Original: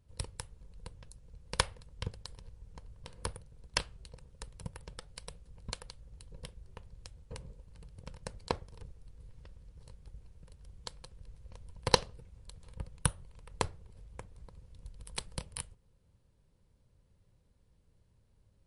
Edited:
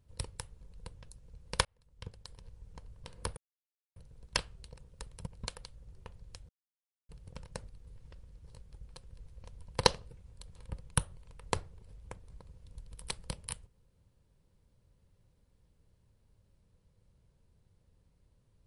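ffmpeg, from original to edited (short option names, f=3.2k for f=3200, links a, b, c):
-filter_complex "[0:a]asplit=9[a][b][c][d][e][f][g][h][i];[a]atrim=end=1.65,asetpts=PTS-STARTPTS,afade=t=out:st=1.646:d=0.004:c=hsin[j];[b]atrim=start=1.65:end=3.37,asetpts=PTS-STARTPTS,afade=t=in:d=0.94,afade=t=out:st=1.716:d=0.004:c=hsin,apad=pad_dur=0.59[k];[c]atrim=start=3.37:end=4.682,asetpts=PTS-STARTPTS,afade=t=in:d=0.004:c=hsin[l];[d]atrim=start=5.518:end=6.182[m];[e]atrim=start=6.638:end=7.2,asetpts=PTS-STARTPTS,afade=t=out:st=0.558:d=0.004:c=hsin[n];[f]atrim=start=7.2:end=7.8,asetpts=PTS-STARTPTS,volume=0[o];[g]atrim=start=7.8:end=8.402,asetpts=PTS-STARTPTS,afade=t=in:d=0.004:c=hsin[p];[h]atrim=start=9.018:end=10.222[q];[i]atrim=start=10.968[r];[j][k][l]concat=n=3:v=0:a=1[s];[s][m]acrossfade=d=0.004:c1=hsin:c2=hsin[t];[n][o][p]concat=n=3:v=0:a=1[u];[t][u]acrossfade=d=0.004:c1=hsin:c2=hsin[v];[v][q]acrossfade=d=0.004:c1=hsin:c2=hsin[w];[w][r]acrossfade=d=0.004:c1=hsin:c2=hsin"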